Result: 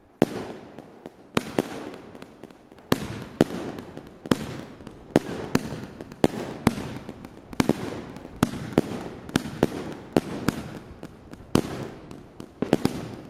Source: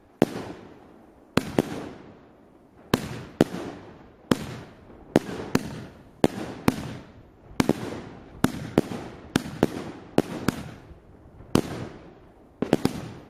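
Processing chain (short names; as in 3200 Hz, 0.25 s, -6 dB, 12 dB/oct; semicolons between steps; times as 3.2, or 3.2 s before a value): 0.45–1.95 low shelf 180 Hz -8.5 dB; multi-head echo 0.283 s, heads all three, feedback 45%, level -23 dB; on a send at -15.5 dB: reverb RT60 2.5 s, pre-delay 87 ms; on the sum: record warp 33 1/3 rpm, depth 160 cents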